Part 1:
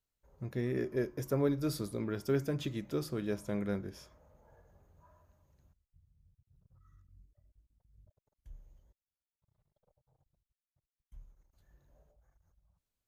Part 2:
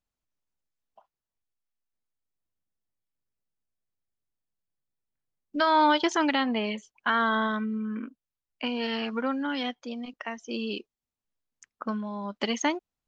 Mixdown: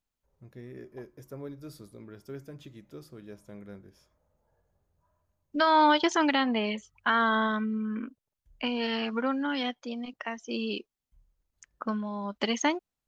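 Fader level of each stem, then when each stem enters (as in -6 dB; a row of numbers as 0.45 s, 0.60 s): -10.5 dB, 0.0 dB; 0.00 s, 0.00 s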